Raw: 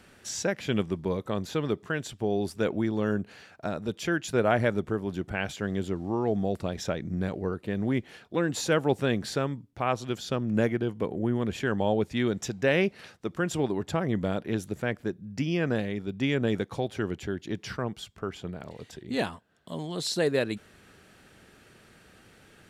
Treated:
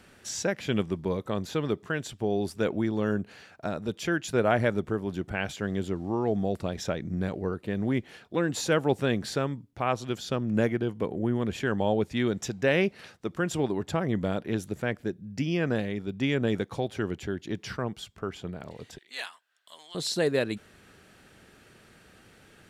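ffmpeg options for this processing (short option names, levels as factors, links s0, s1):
-filter_complex "[0:a]asettb=1/sr,asplit=3[s0][s1][s2];[s0]atrim=end=15.004[s3];[s1]atrim=start=15:end=15.45,asetpts=PTS-STARTPTS,afade=t=in:d=0.004:c=qsin,afade=t=out:st=0.446:d=0.004:c=qsin,equalizer=f=1100:w=2.5:g=-6.5[s4];[s2]atrim=start=15.446[s5];[s3][s4]acrossfade=d=0.004:c1=hsin:c2=qsin[s6];[s6][s5]acrossfade=d=0.004:c1=qsin:c2=hsin,asettb=1/sr,asplit=3[s7][s8][s9];[s7]atrim=end=18.984[s10];[s8]atrim=start=18.98:end=19.95,asetpts=PTS-STARTPTS,afade=t=in:d=0.004:c=qsin,afade=t=out:st=0.966:d=0.004:c=qsin,highpass=1500[s11];[s9]atrim=start=19.946[s12];[s10][s11]acrossfade=d=0.004:c1=hsin:c2=qsin[s13];[s13][s12]acrossfade=d=0.004:c1=qsin:c2=hsin"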